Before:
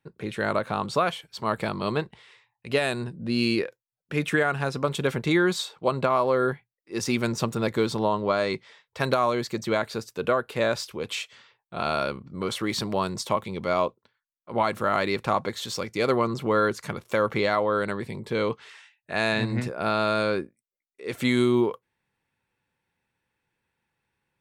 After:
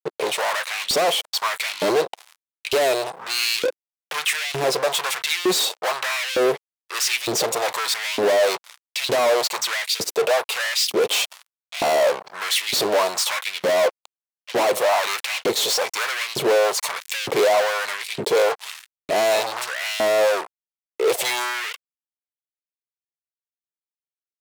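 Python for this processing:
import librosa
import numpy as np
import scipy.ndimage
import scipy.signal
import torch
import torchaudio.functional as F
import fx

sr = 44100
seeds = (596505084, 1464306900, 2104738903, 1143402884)

y = fx.fixed_phaser(x, sr, hz=630.0, stages=4)
y = fx.fuzz(y, sr, gain_db=45.0, gate_db=-51.0)
y = fx.filter_lfo_highpass(y, sr, shape='saw_up', hz=1.1, low_hz=270.0, high_hz=3200.0, q=1.7)
y = F.gain(torch.from_numpy(y), -6.0).numpy()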